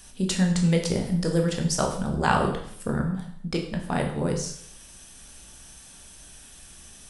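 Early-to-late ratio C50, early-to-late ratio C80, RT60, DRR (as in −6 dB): 7.0 dB, 9.5 dB, 0.65 s, 1.5 dB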